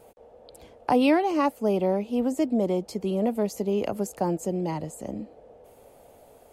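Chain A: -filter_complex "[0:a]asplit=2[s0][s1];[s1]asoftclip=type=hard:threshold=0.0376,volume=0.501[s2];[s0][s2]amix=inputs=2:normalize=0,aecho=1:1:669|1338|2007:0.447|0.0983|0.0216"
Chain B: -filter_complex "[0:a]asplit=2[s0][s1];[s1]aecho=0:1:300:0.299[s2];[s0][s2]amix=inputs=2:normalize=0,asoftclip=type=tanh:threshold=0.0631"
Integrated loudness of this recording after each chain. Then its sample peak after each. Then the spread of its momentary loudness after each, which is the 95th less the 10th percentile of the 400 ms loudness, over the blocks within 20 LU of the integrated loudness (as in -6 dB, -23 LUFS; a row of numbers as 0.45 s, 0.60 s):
-24.0 LUFS, -30.5 LUFS; -10.0 dBFS, -24.0 dBFS; 15 LU, 17 LU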